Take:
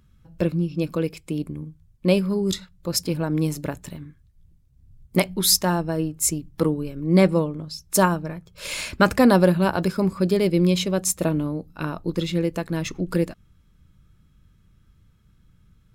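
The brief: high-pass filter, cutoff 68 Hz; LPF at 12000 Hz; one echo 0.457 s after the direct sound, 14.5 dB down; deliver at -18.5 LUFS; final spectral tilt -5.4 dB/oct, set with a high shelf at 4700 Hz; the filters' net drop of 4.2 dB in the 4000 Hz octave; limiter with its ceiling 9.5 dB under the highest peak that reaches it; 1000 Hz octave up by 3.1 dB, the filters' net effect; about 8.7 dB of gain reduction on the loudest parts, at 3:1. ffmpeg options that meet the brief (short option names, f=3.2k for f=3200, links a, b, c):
-af "highpass=68,lowpass=12k,equalizer=f=1k:t=o:g=4,equalizer=f=4k:t=o:g=-8,highshelf=f=4.7k:g=3.5,acompressor=threshold=-22dB:ratio=3,alimiter=limit=-19dB:level=0:latency=1,aecho=1:1:457:0.188,volume=11.5dB"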